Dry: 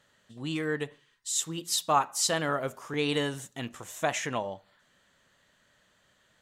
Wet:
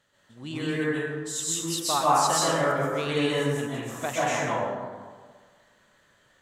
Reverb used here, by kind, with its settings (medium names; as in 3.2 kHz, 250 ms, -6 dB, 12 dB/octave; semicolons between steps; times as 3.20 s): plate-style reverb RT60 1.6 s, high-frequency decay 0.4×, pre-delay 115 ms, DRR -7.5 dB; trim -3.5 dB